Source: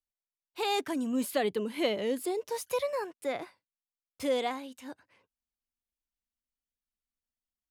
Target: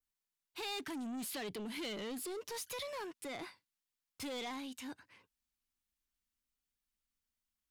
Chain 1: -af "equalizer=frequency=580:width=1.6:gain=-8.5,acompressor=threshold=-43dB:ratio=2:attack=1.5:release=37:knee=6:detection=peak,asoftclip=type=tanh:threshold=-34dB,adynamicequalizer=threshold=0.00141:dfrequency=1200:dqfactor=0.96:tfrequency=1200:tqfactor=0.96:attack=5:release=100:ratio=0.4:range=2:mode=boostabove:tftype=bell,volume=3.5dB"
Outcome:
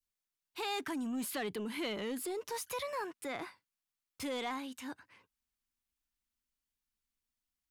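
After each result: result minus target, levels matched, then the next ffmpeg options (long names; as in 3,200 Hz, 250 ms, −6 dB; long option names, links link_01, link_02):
soft clipping: distortion −10 dB; 1,000 Hz band +2.5 dB
-af "equalizer=frequency=580:width=1.6:gain=-8.5,acompressor=threshold=-43dB:ratio=2:attack=1.5:release=37:knee=6:detection=peak,asoftclip=type=tanh:threshold=-42.5dB,adynamicequalizer=threshold=0.00141:dfrequency=1200:dqfactor=0.96:tfrequency=1200:tqfactor=0.96:attack=5:release=100:ratio=0.4:range=2:mode=boostabove:tftype=bell,volume=3.5dB"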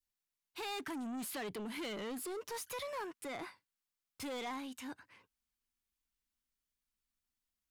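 1,000 Hz band +2.5 dB
-af "equalizer=frequency=580:width=1.6:gain=-8.5,acompressor=threshold=-43dB:ratio=2:attack=1.5:release=37:knee=6:detection=peak,asoftclip=type=tanh:threshold=-42.5dB,adynamicequalizer=threshold=0.00141:dfrequency=4100:dqfactor=0.96:tfrequency=4100:tqfactor=0.96:attack=5:release=100:ratio=0.4:range=2:mode=boostabove:tftype=bell,volume=3.5dB"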